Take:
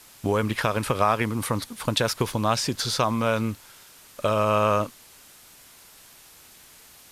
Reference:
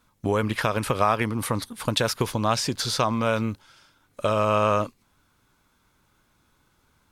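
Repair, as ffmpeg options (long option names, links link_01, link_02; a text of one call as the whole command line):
ffmpeg -i in.wav -af "afwtdn=0.0035" out.wav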